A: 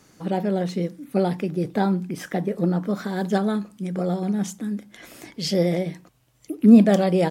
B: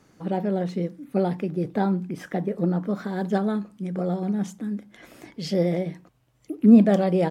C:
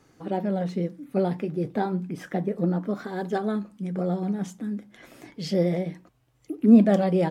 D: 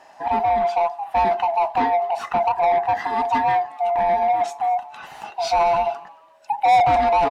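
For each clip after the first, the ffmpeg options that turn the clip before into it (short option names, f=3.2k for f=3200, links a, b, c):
-af "highshelf=f=3.1k:g=-9,volume=-1.5dB"
-af "flanger=delay=2.4:depth=5.6:regen=-60:speed=0.31:shape=sinusoidal,volume=3dB"
-filter_complex "[0:a]afftfilt=real='real(if(lt(b,1008),b+24*(1-2*mod(floor(b/24),2)),b),0)':imag='imag(if(lt(b,1008),b+24*(1-2*mod(floor(b/24),2)),b),0)':win_size=2048:overlap=0.75,asplit=2[a][b];[b]highpass=f=720:p=1,volume=24dB,asoftclip=type=tanh:threshold=-4.5dB[c];[a][c]amix=inputs=2:normalize=0,lowpass=f=2.4k:p=1,volume=-6dB,asplit=3[d][e][f];[e]adelay=221,afreqshift=140,volume=-23.5dB[g];[f]adelay=442,afreqshift=280,volume=-33.7dB[h];[d][g][h]amix=inputs=3:normalize=0,volume=-4dB"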